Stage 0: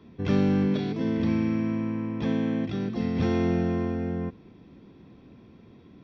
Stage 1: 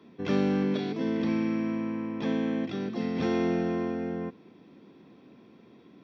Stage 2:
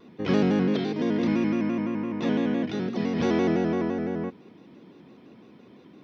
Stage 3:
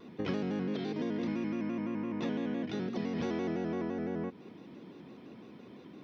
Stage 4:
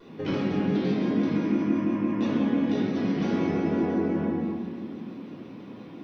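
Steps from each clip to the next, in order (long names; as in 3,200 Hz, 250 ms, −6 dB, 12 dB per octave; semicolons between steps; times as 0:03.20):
high-pass filter 220 Hz 12 dB per octave
pitch modulation by a square or saw wave square 5.9 Hz, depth 100 cents; level +3.5 dB
downward compressor 4 to 1, threshold −33 dBFS, peak gain reduction 13 dB
convolution reverb RT60 2.0 s, pre-delay 3 ms, DRR −6 dB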